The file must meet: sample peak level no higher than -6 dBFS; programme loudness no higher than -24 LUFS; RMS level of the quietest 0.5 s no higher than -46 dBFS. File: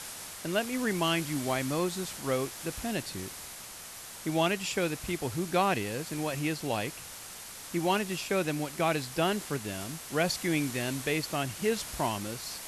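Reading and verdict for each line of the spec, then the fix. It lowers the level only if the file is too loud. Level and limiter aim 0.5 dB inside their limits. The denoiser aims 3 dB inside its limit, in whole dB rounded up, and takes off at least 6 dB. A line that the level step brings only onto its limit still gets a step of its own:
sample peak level -13.0 dBFS: OK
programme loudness -31.5 LUFS: OK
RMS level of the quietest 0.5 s -45 dBFS: fail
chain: denoiser 6 dB, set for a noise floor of -45 dBFS

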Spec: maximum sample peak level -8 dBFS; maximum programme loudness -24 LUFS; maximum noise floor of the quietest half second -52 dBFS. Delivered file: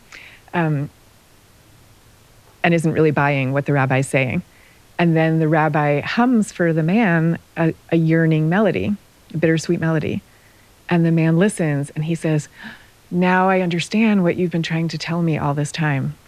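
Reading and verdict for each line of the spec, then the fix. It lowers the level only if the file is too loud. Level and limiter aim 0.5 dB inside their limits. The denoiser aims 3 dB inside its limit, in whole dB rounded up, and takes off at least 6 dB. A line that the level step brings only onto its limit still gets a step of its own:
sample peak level -2.5 dBFS: fail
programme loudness -18.5 LUFS: fail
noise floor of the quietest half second -50 dBFS: fail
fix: gain -6 dB

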